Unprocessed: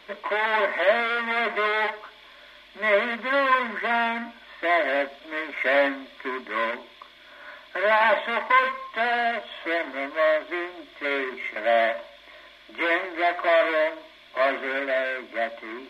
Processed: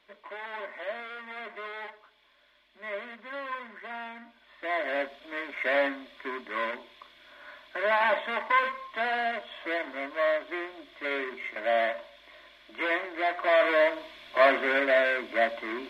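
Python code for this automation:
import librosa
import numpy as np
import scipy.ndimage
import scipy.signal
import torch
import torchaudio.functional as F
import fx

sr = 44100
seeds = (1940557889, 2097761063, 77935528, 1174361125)

y = fx.gain(x, sr, db=fx.line((4.18, -15.5), (5.02, -5.0), (13.36, -5.0), (13.96, 2.0)))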